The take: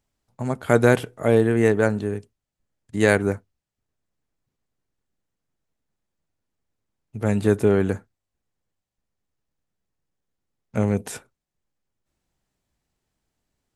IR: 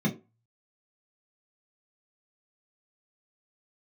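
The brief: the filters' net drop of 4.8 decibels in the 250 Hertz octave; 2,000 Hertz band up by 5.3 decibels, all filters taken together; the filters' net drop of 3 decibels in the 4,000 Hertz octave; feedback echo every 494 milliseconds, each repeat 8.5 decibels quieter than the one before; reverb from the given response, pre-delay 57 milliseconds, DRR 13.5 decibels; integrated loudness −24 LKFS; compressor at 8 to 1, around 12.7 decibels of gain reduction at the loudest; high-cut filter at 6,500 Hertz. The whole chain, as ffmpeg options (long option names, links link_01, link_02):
-filter_complex "[0:a]lowpass=6500,equalizer=frequency=250:width_type=o:gain=-6.5,equalizer=frequency=2000:width_type=o:gain=8.5,equalizer=frequency=4000:width_type=o:gain=-7,acompressor=threshold=-24dB:ratio=8,aecho=1:1:494|988|1482|1976:0.376|0.143|0.0543|0.0206,asplit=2[link_01][link_02];[1:a]atrim=start_sample=2205,adelay=57[link_03];[link_02][link_03]afir=irnorm=-1:irlink=0,volume=-21.5dB[link_04];[link_01][link_04]amix=inputs=2:normalize=0,volume=6.5dB"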